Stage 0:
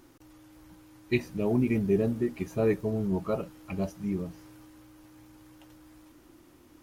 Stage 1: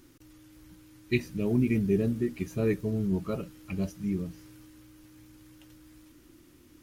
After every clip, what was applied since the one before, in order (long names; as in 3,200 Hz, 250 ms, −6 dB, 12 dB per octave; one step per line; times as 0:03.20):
parametric band 780 Hz −11.5 dB 1.4 octaves
level +2 dB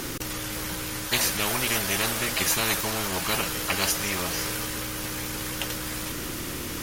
every bin compressed towards the loudest bin 10 to 1
level +4 dB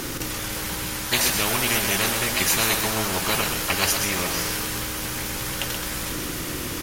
single-tap delay 128 ms −6 dB
level +2.5 dB